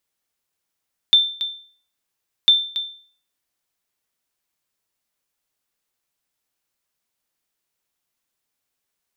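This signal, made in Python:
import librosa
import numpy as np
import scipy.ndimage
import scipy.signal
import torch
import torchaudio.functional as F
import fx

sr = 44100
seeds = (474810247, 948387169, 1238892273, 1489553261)

y = fx.sonar_ping(sr, hz=3560.0, decay_s=0.47, every_s=1.35, pings=2, echo_s=0.28, echo_db=-12.0, level_db=-6.0)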